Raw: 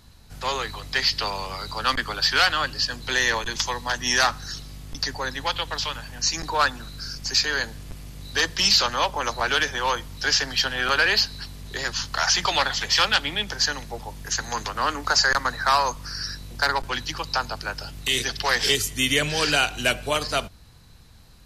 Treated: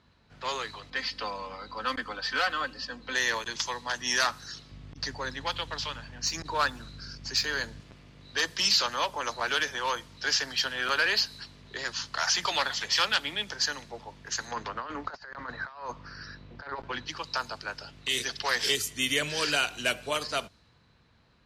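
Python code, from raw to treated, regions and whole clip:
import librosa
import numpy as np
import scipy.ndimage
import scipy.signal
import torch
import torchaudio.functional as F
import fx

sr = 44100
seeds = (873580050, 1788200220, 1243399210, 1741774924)

y = fx.chain(x, sr, fx.high_shelf(hz=2700.0, db=-11.5),
    fx.comb(ms=3.9, depth=0.67), at=(0.9, 3.15))
y = fx.chain(y, sr, fx.median_filter(points=3),
    fx.low_shelf(hz=170.0, db=11.5),
    fx.transformer_sat(knee_hz=110.0), at=(4.71, 7.8))
y = fx.chain(y, sr, fx.over_compress(threshold_db=-26.0, ratio=-0.5),
    fx.spacing_loss(db_at_10k=23), at=(14.51, 17.08))
y = fx.highpass(y, sr, hz=210.0, slope=6)
y = fx.notch(y, sr, hz=780.0, q=12.0)
y = fx.env_lowpass(y, sr, base_hz=2800.0, full_db=-20.0)
y = y * 10.0 ** (-5.5 / 20.0)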